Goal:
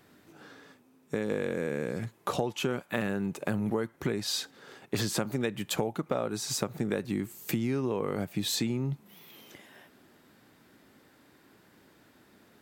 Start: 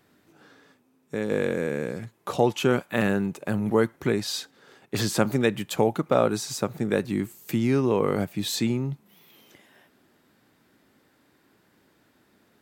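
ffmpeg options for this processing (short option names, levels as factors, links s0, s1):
-af "acompressor=threshold=0.0316:ratio=6,volume=1.41"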